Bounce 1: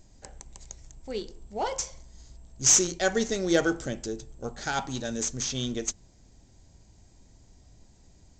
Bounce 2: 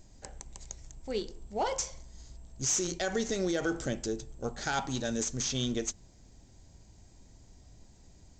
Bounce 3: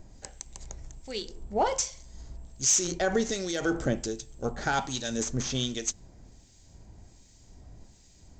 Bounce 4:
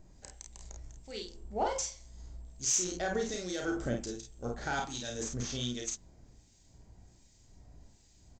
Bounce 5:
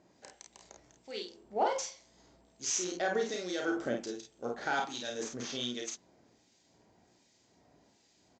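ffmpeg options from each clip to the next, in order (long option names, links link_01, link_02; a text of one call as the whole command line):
ffmpeg -i in.wav -af "alimiter=limit=-21dB:level=0:latency=1:release=64" out.wav
ffmpeg -i in.wav -filter_complex "[0:a]acrossover=split=2000[link_01][link_02];[link_01]aeval=exprs='val(0)*(1-0.7/2+0.7/2*cos(2*PI*1.3*n/s))':channel_layout=same[link_03];[link_02]aeval=exprs='val(0)*(1-0.7/2-0.7/2*cos(2*PI*1.3*n/s))':channel_layout=same[link_04];[link_03][link_04]amix=inputs=2:normalize=0,volume=6.5dB" out.wav
ffmpeg -i in.wav -af "aecho=1:1:33|50:0.562|0.562,volume=-8dB" out.wav
ffmpeg -i in.wav -af "highpass=280,lowpass=4800,volume=2.5dB" out.wav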